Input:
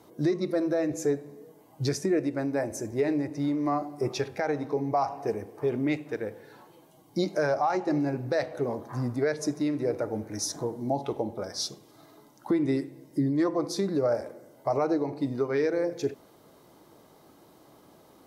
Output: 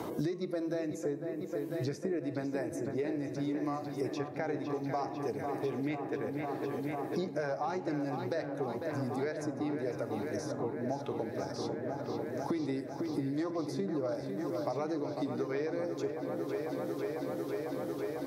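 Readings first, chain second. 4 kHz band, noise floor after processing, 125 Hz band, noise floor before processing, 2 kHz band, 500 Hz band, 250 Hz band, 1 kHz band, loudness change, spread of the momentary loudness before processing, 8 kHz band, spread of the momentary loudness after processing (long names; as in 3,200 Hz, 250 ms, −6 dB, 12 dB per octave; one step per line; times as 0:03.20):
−10.0 dB, −42 dBFS, −5.5 dB, −57 dBFS, −5.5 dB, −5.5 dB, −5.5 dB, −6.0 dB, −6.5 dB, 7 LU, −13.0 dB, 3 LU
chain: delay with a low-pass on its return 498 ms, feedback 82%, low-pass 2,800 Hz, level −9 dB
multiband upward and downward compressor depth 100%
level −8.5 dB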